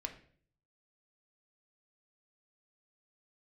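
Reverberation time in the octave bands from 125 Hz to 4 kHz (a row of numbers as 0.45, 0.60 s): 0.90, 0.65, 0.60, 0.45, 0.50, 0.45 s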